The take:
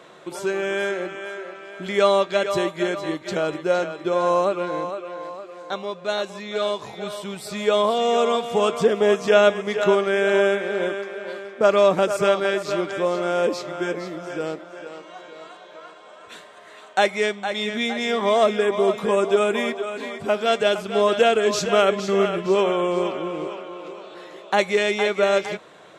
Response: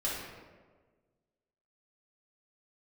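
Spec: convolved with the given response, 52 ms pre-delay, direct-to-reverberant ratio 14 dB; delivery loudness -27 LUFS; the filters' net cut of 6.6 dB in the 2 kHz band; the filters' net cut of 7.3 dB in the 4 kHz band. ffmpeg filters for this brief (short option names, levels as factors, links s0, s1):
-filter_complex "[0:a]equalizer=f=2000:t=o:g=-7.5,equalizer=f=4000:t=o:g=-6.5,asplit=2[s0][s1];[1:a]atrim=start_sample=2205,adelay=52[s2];[s1][s2]afir=irnorm=-1:irlink=0,volume=0.1[s3];[s0][s3]amix=inputs=2:normalize=0,volume=0.596"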